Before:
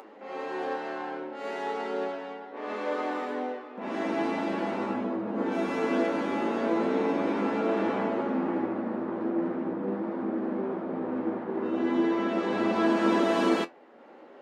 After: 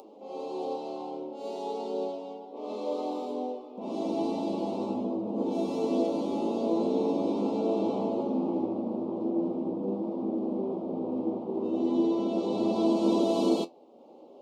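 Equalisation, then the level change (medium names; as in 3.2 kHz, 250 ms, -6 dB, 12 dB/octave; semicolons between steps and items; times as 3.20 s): dynamic bell 4.1 kHz, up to +4 dB, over -59 dBFS, Q 5.1; Butterworth band-stop 1.7 kHz, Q 0.63; 0.0 dB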